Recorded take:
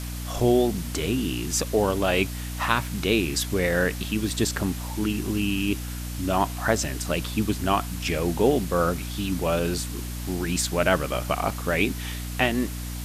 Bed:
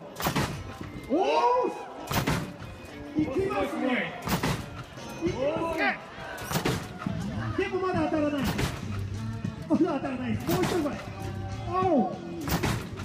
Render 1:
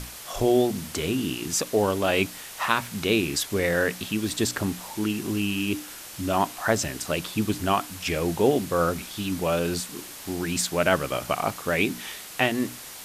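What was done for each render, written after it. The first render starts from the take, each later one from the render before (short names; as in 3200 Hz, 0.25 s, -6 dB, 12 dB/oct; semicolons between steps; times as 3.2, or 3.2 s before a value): notches 60/120/180/240/300 Hz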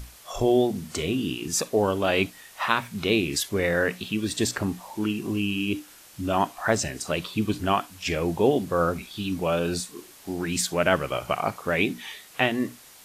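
noise print and reduce 9 dB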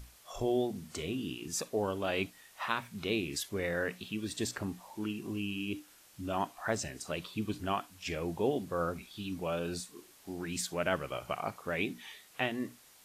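gain -10 dB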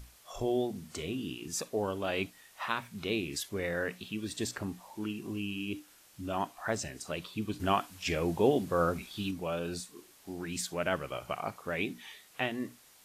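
7.6–9.31 gain +5 dB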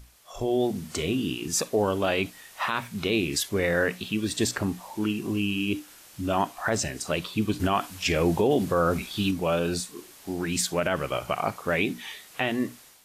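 limiter -22.5 dBFS, peak gain reduction 9 dB; AGC gain up to 9.5 dB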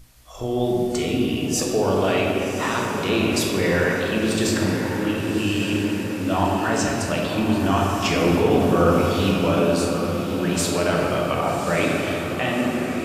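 diffused feedback echo 1.146 s, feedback 57%, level -9 dB; shoebox room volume 160 m³, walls hard, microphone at 0.6 m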